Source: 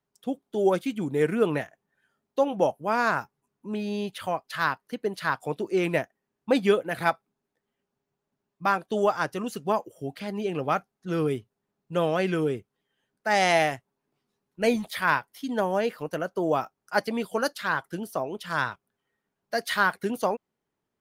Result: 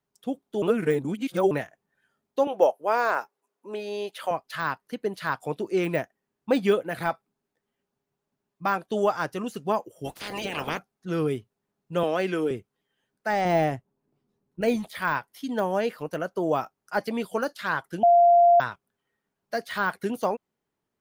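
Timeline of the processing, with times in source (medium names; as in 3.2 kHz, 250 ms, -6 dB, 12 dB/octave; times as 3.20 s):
0.62–1.51 s: reverse
2.47–4.31 s: resonant high-pass 470 Hz, resonance Q 1.6
10.04–10.77 s: spectral peaks clipped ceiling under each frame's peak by 28 dB
12.03–12.51 s: high-pass 200 Hz 24 dB/octave
13.45–14.61 s: tilt shelf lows +7.5 dB, about 750 Hz
18.03–18.60 s: bleep 693 Hz -13 dBFS
whole clip: de-esser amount 90%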